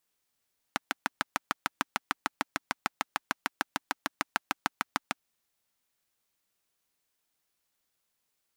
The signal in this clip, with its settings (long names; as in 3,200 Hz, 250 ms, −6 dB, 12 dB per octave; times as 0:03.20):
pulse-train model of a single-cylinder engine, steady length 4.40 s, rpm 800, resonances 280/880/1,300 Hz